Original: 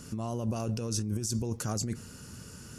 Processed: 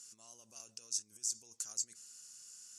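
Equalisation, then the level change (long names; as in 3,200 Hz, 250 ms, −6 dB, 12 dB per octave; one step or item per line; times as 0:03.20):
resonant band-pass 7,100 Hz, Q 2.1
+1.0 dB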